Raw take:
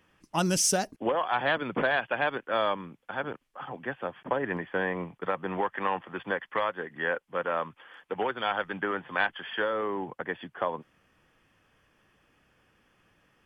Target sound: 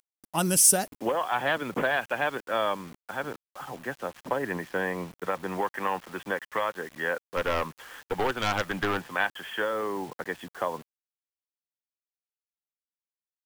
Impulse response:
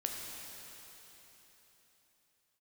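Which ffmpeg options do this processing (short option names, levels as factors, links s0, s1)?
-filter_complex "[0:a]aexciter=amount=4.4:drive=7.2:freq=8300,asplit=3[s0][s1][s2];[s0]afade=t=out:st=7.36:d=0.02[s3];[s1]aeval=exprs='0.178*(cos(1*acos(clip(val(0)/0.178,-1,1)))-cos(1*PI/2))+0.0398*(cos(3*acos(clip(val(0)/0.178,-1,1)))-cos(3*PI/2))+0.0447*(cos(4*acos(clip(val(0)/0.178,-1,1)))-cos(4*PI/2))+0.0501*(cos(5*acos(clip(val(0)/0.178,-1,1)))-cos(5*PI/2))':c=same,afade=t=in:st=7.36:d=0.02,afade=t=out:st=9.04:d=0.02[s4];[s2]afade=t=in:st=9.04:d=0.02[s5];[s3][s4][s5]amix=inputs=3:normalize=0,acrusher=bits=7:mix=0:aa=0.000001"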